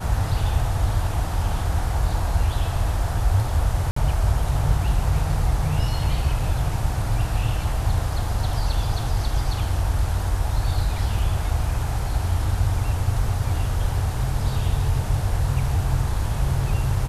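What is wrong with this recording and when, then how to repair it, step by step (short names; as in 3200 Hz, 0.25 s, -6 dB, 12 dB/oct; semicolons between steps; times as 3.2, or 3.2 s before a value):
3.91–3.96 gap 54 ms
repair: interpolate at 3.91, 54 ms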